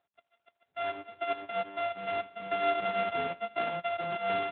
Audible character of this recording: a buzz of ramps at a fixed pitch in blocks of 64 samples; AMR-NB

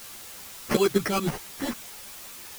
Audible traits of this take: aliases and images of a low sample rate 3.7 kHz, jitter 0%; tremolo saw up 9.3 Hz, depth 80%; a quantiser's noise floor 8-bit, dither triangular; a shimmering, thickened sound

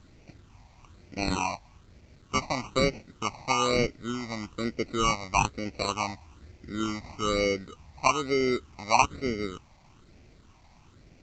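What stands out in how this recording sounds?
aliases and images of a low sample rate 1.7 kHz, jitter 0%; phasing stages 8, 1.1 Hz, lowest notch 410–1100 Hz; a quantiser's noise floor 12-bit, dither none; Vorbis

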